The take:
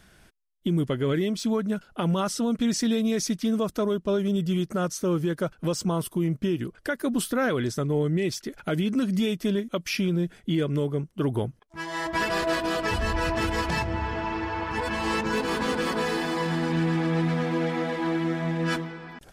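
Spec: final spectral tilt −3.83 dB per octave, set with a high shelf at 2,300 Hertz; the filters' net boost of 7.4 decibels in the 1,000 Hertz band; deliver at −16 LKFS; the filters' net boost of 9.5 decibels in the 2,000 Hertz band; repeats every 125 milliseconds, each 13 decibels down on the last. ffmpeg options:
ffmpeg -i in.wav -af "equalizer=frequency=1000:width_type=o:gain=5.5,equalizer=frequency=2000:width_type=o:gain=6,highshelf=frequency=2300:gain=8.5,aecho=1:1:125|250|375:0.224|0.0493|0.0108,volume=6.5dB" out.wav

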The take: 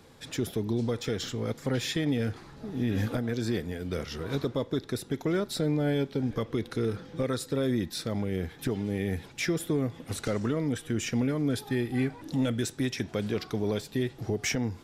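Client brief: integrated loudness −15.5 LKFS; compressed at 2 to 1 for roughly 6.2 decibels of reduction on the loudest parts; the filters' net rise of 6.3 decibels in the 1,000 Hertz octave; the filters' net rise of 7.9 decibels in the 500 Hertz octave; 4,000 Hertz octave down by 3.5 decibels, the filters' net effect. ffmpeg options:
ffmpeg -i in.wav -af "equalizer=frequency=500:width_type=o:gain=8.5,equalizer=frequency=1000:width_type=o:gain=6,equalizer=frequency=4000:width_type=o:gain=-5,acompressor=threshold=-30dB:ratio=2,volume=16dB" out.wav

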